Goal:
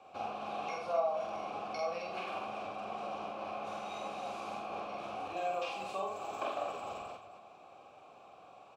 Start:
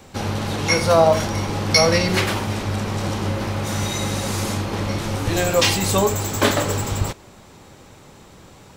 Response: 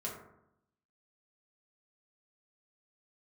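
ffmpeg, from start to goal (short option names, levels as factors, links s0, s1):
-filter_complex "[0:a]acompressor=threshold=0.0562:ratio=5,asplit=3[s0][s1][s2];[s0]bandpass=f=730:t=q:w=8,volume=1[s3];[s1]bandpass=f=1090:t=q:w=8,volume=0.501[s4];[s2]bandpass=f=2440:t=q:w=8,volume=0.355[s5];[s3][s4][s5]amix=inputs=3:normalize=0,asplit=2[s6][s7];[s7]aecho=0:1:46.65|84.55|262.4:0.794|0.398|0.282[s8];[s6][s8]amix=inputs=2:normalize=0"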